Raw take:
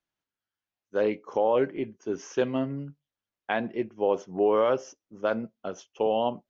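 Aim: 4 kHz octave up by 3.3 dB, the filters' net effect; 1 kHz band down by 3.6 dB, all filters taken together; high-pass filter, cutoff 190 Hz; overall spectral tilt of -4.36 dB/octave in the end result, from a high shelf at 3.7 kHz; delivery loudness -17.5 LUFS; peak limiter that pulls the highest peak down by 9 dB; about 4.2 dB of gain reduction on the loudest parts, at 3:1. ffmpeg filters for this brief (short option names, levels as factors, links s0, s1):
-af "highpass=190,equalizer=f=1000:t=o:g=-5,highshelf=f=3700:g=-5,equalizer=f=4000:t=o:g=8.5,acompressor=threshold=0.0501:ratio=3,volume=9.44,alimiter=limit=0.531:level=0:latency=1"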